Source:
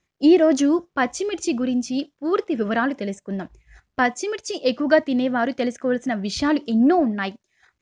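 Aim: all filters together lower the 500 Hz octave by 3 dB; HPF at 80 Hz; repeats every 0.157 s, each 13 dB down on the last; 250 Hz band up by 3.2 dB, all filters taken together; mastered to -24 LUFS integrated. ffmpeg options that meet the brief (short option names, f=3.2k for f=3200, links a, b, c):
-af "highpass=80,equalizer=f=250:t=o:g=6,equalizer=f=500:t=o:g=-7,aecho=1:1:157|314|471:0.224|0.0493|0.0108,volume=-4dB"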